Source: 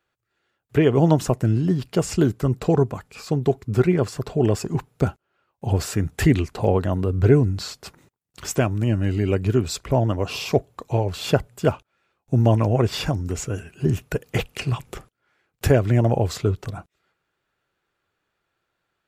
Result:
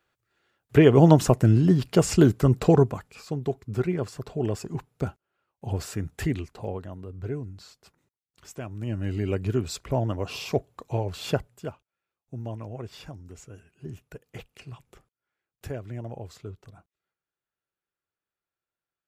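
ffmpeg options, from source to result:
-af "volume=4.22,afade=t=out:st=2.67:d=0.57:silence=0.334965,afade=t=out:st=5.99:d=0.96:silence=0.354813,afade=t=in:st=8.6:d=0.56:silence=0.281838,afade=t=out:st=11.31:d=0.41:silence=0.251189"

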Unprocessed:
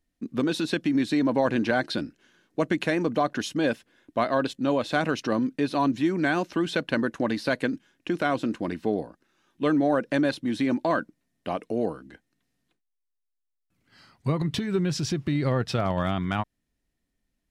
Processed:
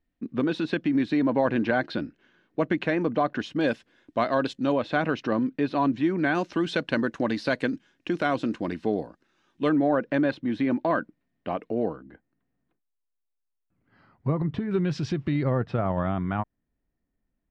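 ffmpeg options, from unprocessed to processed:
-af "asetnsamples=n=441:p=0,asendcmd='3.61 lowpass f 5900;4.72 lowpass f 3000;6.35 lowpass f 6100;9.69 lowpass f 2600;11.96 lowpass f 1400;14.71 lowpass f 3200;15.43 lowpass f 1500',lowpass=2900"

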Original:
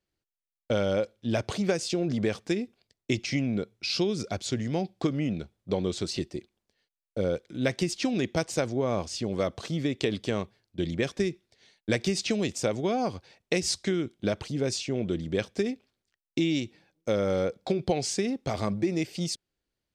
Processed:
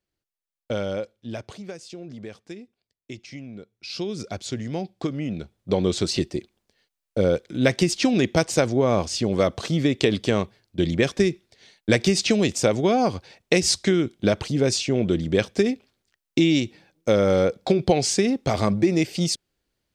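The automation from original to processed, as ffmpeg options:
-af "volume=7.5,afade=t=out:st=0.78:d=0.85:silence=0.316228,afade=t=in:st=3.71:d=0.51:silence=0.298538,afade=t=in:st=5.25:d=0.66:silence=0.421697"

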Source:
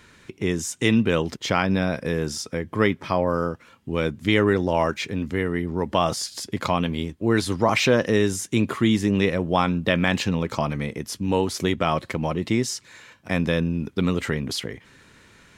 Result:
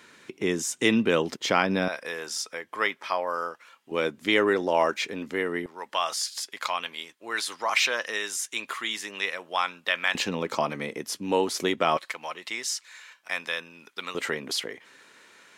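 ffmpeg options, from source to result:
-af "asetnsamples=n=441:p=0,asendcmd='1.88 highpass f 800;3.91 highpass f 370;5.66 highpass f 1100;10.15 highpass f 320;11.97 highpass f 1100;14.15 highpass f 420',highpass=250"

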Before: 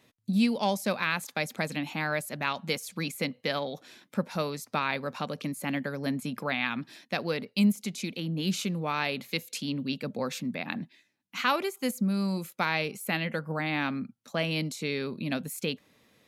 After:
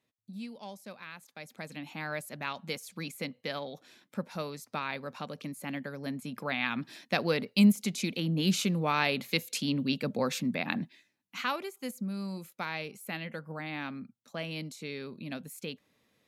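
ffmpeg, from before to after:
-af "volume=1.26,afade=t=in:st=1.32:d=0.83:silence=0.281838,afade=t=in:st=6.24:d=0.9:silence=0.398107,afade=t=out:st=10.78:d=0.81:silence=0.316228"

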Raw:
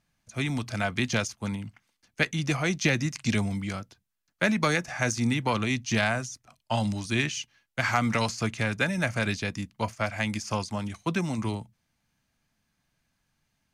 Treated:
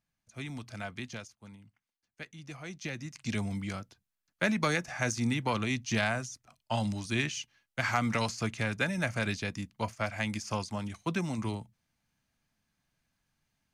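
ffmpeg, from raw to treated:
-af "volume=1.58,afade=t=out:st=0.87:d=0.45:silence=0.398107,afade=t=in:st=2.39:d=0.71:silence=0.473151,afade=t=in:st=3.1:d=0.47:silence=0.375837"

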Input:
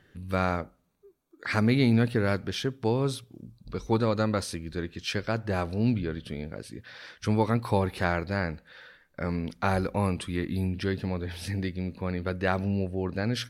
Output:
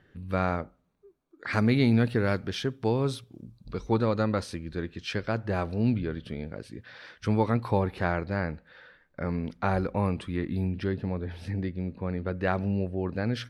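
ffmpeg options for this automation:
-af "asetnsamples=n=441:p=0,asendcmd='1.53 lowpass f 6000;3.79 lowpass f 3200;7.68 lowpass f 2000;10.87 lowpass f 1200;12.37 lowpass f 2400',lowpass=f=2500:p=1"

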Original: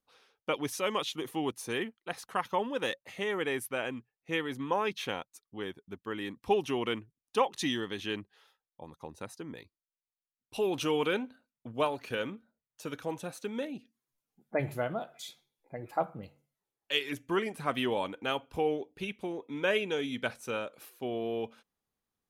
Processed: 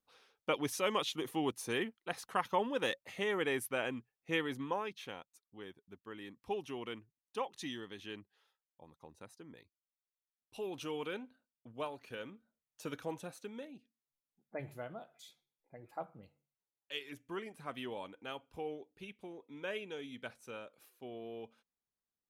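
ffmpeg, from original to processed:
-af "volume=2,afade=t=out:st=4.46:d=0.44:silence=0.354813,afade=t=in:st=12.35:d=0.52:silence=0.398107,afade=t=out:st=12.87:d=0.78:silence=0.354813"

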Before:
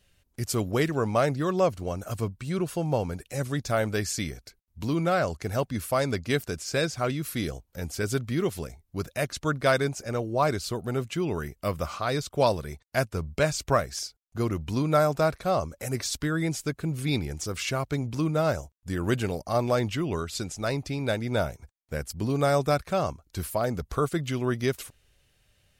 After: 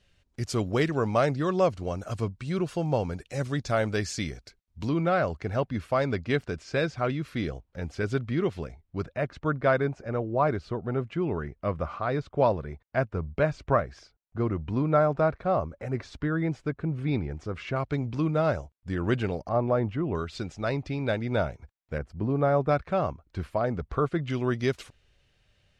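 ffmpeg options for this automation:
-af "asetnsamples=n=441:p=0,asendcmd='4.89 lowpass f 3000;9.06 lowpass f 1800;17.76 lowpass f 3200;19.49 lowpass f 1300;20.15 lowpass f 3200;21.98 lowpass f 1400;22.69 lowpass f 2400;24.3 lowpass f 5000',lowpass=5700"

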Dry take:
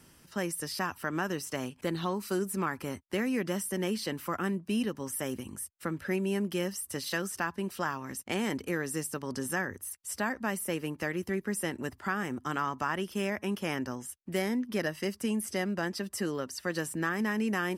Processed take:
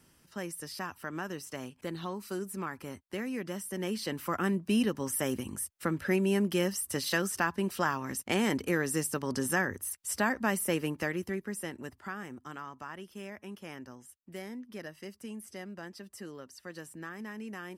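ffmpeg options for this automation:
-af "volume=1.41,afade=t=in:st=3.62:d=1.05:silence=0.375837,afade=t=out:st=10.77:d=0.68:silence=0.421697,afade=t=out:st=11.45:d=1.19:silence=0.446684"

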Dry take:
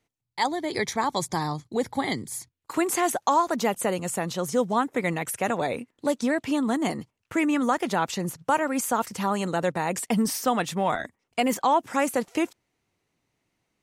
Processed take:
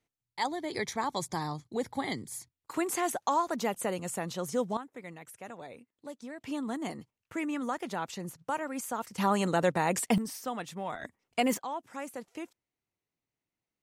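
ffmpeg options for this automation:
-af "asetnsamples=n=441:p=0,asendcmd='4.77 volume volume -18.5dB;6.41 volume volume -10dB;9.18 volume volume -1dB;10.18 volume volume -12dB;11.02 volume volume -3.5dB;11.58 volume volume -15.5dB',volume=0.473"

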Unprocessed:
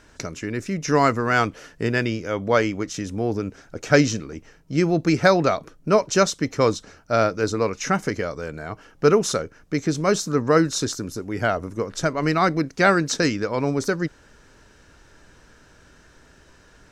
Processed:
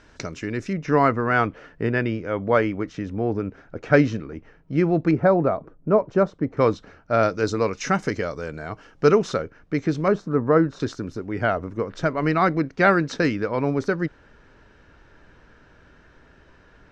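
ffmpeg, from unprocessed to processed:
-af "asetnsamples=n=441:p=0,asendcmd='0.73 lowpass f 2200;5.11 lowpass f 1000;6.57 lowpass f 2600;7.23 lowpass f 5800;9.22 lowpass f 3100;10.08 lowpass f 1400;10.8 lowpass f 2900',lowpass=5200"

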